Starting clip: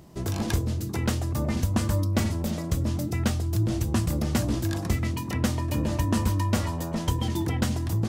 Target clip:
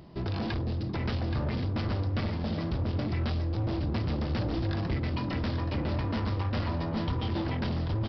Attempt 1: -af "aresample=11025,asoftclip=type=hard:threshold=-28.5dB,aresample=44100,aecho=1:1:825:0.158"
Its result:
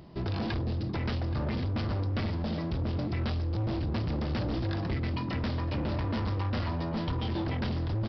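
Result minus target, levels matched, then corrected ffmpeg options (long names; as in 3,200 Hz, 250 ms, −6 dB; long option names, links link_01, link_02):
echo-to-direct −9 dB
-af "aresample=11025,asoftclip=type=hard:threshold=-28.5dB,aresample=44100,aecho=1:1:825:0.447"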